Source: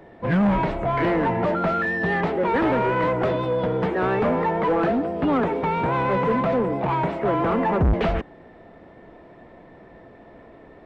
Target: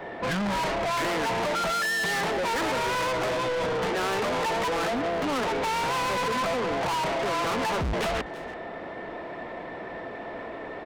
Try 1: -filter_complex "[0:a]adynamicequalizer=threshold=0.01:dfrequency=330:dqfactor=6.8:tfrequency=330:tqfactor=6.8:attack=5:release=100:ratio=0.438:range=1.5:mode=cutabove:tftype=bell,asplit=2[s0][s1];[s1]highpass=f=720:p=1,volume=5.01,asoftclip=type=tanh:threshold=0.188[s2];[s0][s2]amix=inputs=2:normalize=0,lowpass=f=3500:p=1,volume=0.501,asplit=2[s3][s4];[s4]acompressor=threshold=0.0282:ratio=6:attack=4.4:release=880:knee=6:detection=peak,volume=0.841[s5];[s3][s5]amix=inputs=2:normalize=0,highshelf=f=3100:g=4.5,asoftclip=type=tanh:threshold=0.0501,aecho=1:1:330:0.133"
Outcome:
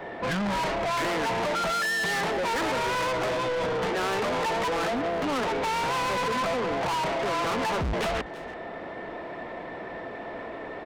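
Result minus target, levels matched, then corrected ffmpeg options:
compression: peak gain reduction +7 dB
-filter_complex "[0:a]adynamicequalizer=threshold=0.01:dfrequency=330:dqfactor=6.8:tfrequency=330:tqfactor=6.8:attack=5:release=100:ratio=0.438:range=1.5:mode=cutabove:tftype=bell,asplit=2[s0][s1];[s1]highpass=f=720:p=1,volume=5.01,asoftclip=type=tanh:threshold=0.188[s2];[s0][s2]amix=inputs=2:normalize=0,lowpass=f=3500:p=1,volume=0.501,asplit=2[s3][s4];[s4]acompressor=threshold=0.075:ratio=6:attack=4.4:release=880:knee=6:detection=peak,volume=0.841[s5];[s3][s5]amix=inputs=2:normalize=0,highshelf=f=3100:g=4.5,asoftclip=type=tanh:threshold=0.0501,aecho=1:1:330:0.133"

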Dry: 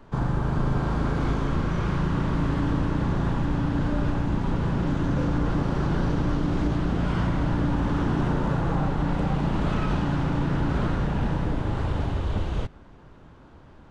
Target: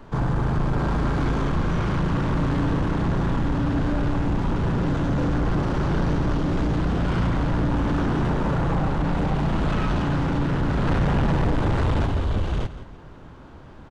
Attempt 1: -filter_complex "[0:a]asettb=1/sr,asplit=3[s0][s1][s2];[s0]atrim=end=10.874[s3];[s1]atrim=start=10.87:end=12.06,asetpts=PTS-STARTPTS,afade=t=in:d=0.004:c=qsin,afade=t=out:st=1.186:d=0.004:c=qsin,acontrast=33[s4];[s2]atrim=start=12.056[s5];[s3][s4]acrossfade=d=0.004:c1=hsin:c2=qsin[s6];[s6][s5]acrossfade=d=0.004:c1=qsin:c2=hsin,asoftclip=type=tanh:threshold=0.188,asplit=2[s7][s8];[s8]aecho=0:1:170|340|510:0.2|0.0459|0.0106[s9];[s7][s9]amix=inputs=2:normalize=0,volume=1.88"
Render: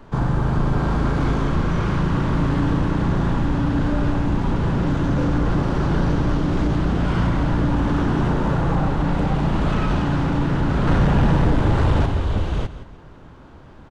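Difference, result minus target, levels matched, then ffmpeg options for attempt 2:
saturation: distortion -10 dB
-filter_complex "[0:a]asettb=1/sr,asplit=3[s0][s1][s2];[s0]atrim=end=10.874[s3];[s1]atrim=start=10.87:end=12.06,asetpts=PTS-STARTPTS,afade=t=in:d=0.004:c=qsin,afade=t=out:st=1.186:d=0.004:c=qsin,acontrast=33[s4];[s2]atrim=start=12.056[s5];[s3][s4]acrossfade=d=0.004:c1=hsin:c2=qsin[s6];[s6][s5]acrossfade=d=0.004:c1=qsin:c2=hsin,asoftclip=type=tanh:threshold=0.0708,asplit=2[s7][s8];[s8]aecho=0:1:170|340|510:0.2|0.0459|0.0106[s9];[s7][s9]amix=inputs=2:normalize=0,volume=1.88"

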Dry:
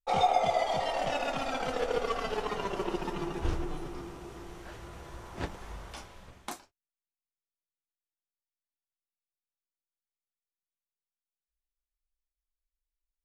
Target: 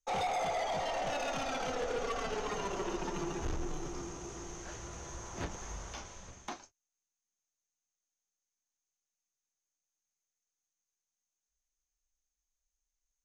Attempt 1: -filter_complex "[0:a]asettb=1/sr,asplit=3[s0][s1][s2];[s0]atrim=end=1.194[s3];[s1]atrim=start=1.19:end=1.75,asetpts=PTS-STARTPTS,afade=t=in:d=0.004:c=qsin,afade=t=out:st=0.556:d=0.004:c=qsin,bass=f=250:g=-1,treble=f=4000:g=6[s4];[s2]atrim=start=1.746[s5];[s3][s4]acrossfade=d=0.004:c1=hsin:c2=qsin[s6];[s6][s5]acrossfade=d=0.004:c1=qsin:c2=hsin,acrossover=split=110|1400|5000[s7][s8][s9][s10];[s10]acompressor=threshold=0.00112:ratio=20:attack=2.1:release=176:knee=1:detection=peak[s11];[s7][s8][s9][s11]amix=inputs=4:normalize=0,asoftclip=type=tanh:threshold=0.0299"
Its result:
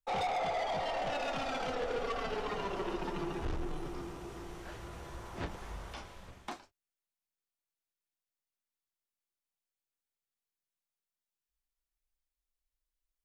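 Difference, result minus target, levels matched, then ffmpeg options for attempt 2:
8 kHz band -10.5 dB
-filter_complex "[0:a]asettb=1/sr,asplit=3[s0][s1][s2];[s0]atrim=end=1.194[s3];[s1]atrim=start=1.19:end=1.75,asetpts=PTS-STARTPTS,afade=t=in:d=0.004:c=qsin,afade=t=out:st=0.556:d=0.004:c=qsin,bass=f=250:g=-1,treble=f=4000:g=6[s4];[s2]atrim=start=1.746[s5];[s3][s4]acrossfade=d=0.004:c1=hsin:c2=qsin[s6];[s6][s5]acrossfade=d=0.004:c1=qsin:c2=hsin,acrossover=split=110|1400|5000[s7][s8][s9][s10];[s10]acompressor=threshold=0.00112:ratio=20:attack=2.1:release=176:knee=1:detection=peak,lowpass=f=6400:t=q:w=15[s11];[s7][s8][s9][s11]amix=inputs=4:normalize=0,asoftclip=type=tanh:threshold=0.0299"

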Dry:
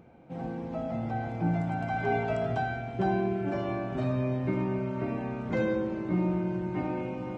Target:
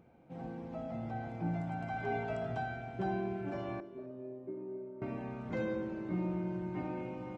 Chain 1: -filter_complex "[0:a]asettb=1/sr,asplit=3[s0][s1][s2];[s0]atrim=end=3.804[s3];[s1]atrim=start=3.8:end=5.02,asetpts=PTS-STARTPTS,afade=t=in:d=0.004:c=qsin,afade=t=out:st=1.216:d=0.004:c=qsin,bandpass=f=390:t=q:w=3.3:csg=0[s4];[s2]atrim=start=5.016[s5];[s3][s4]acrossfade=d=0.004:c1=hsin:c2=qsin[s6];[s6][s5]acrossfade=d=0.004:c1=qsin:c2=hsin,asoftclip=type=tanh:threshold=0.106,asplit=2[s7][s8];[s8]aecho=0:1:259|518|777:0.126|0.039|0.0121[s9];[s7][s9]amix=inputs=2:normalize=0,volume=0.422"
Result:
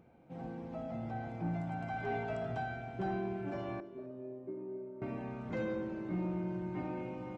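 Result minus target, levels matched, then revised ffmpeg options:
saturation: distortion +14 dB
-filter_complex "[0:a]asettb=1/sr,asplit=3[s0][s1][s2];[s0]atrim=end=3.804[s3];[s1]atrim=start=3.8:end=5.02,asetpts=PTS-STARTPTS,afade=t=in:d=0.004:c=qsin,afade=t=out:st=1.216:d=0.004:c=qsin,bandpass=f=390:t=q:w=3.3:csg=0[s4];[s2]atrim=start=5.016[s5];[s3][s4]acrossfade=d=0.004:c1=hsin:c2=qsin[s6];[s6][s5]acrossfade=d=0.004:c1=qsin:c2=hsin,asoftclip=type=tanh:threshold=0.266,asplit=2[s7][s8];[s8]aecho=0:1:259|518|777:0.126|0.039|0.0121[s9];[s7][s9]amix=inputs=2:normalize=0,volume=0.422"

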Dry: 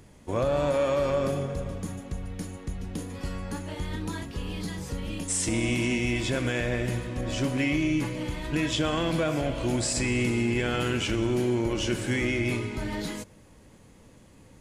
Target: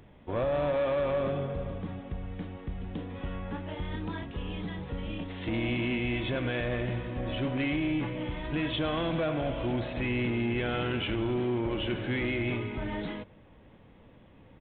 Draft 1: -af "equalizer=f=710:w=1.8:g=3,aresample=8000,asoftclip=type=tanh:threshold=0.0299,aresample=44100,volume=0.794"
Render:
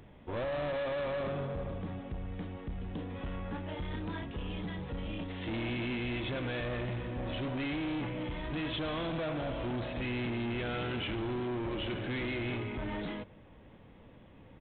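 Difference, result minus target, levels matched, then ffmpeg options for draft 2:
saturation: distortion +9 dB
-af "equalizer=f=710:w=1.8:g=3,aresample=8000,asoftclip=type=tanh:threshold=0.0891,aresample=44100,volume=0.794"

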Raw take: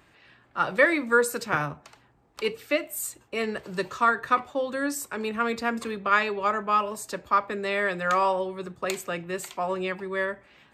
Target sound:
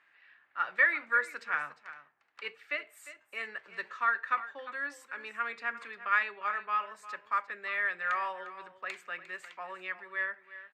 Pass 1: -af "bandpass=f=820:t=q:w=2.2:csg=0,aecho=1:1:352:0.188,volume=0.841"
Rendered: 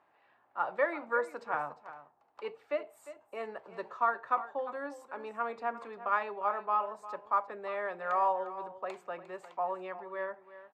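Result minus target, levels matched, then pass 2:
2 kHz band -8.0 dB
-af "bandpass=f=1800:t=q:w=2.2:csg=0,aecho=1:1:352:0.188,volume=0.841"

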